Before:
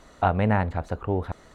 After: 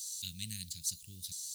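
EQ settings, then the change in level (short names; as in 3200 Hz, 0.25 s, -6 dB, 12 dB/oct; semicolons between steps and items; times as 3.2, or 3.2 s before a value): Chebyshev band-stop 160–4600 Hz, order 3; differentiator; high shelf 2700 Hz +11 dB; +15.0 dB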